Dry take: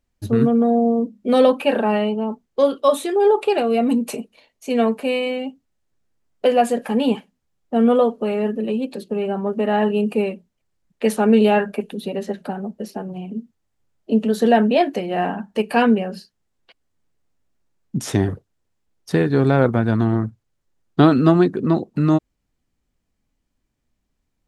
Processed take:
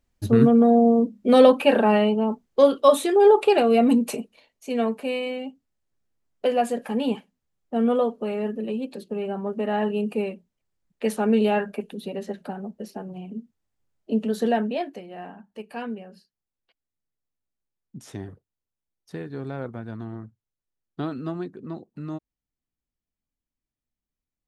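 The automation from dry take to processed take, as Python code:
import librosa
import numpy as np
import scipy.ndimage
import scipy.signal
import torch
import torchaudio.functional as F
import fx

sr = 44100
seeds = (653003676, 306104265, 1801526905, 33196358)

y = fx.gain(x, sr, db=fx.line((3.87, 0.5), (4.69, -6.0), (14.41, -6.0), (15.17, -17.0)))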